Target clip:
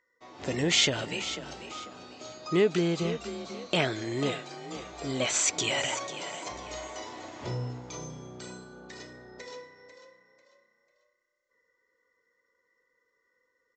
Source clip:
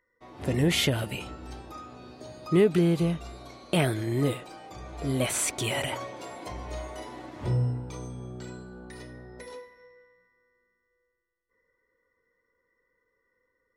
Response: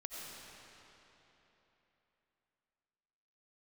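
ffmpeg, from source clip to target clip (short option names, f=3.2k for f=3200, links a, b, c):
-filter_complex "[0:a]aemphasis=mode=production:type=bsi,asplit=4[a][b][c][d];[b]adelay=494,afreqshift=32,volume=-12dB[e];[c]adelay=988,afreqshift=64,volume=-21.9dB[f];[d]adelay=1482,afreqshift=96,volume=-31.8dB[g];[a][e][f][g]amix=inputs=4:normalize=0,aresample=16000,aresample=44100"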